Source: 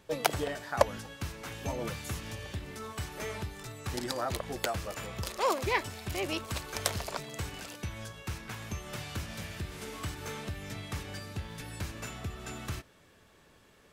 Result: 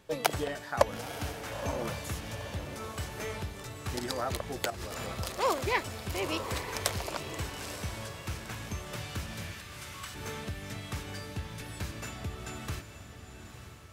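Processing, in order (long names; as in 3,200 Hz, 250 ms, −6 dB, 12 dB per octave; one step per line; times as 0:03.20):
0:04.70–0:05.13: compressor whose output falls as the input rises −41 dBFS, ratio −1
0:09.52–0:10.15: high-pass filter 1,000 Hz 24 dB per octave
feedback delay with all-pass diffusion 919 ms, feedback 41%, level −9 dB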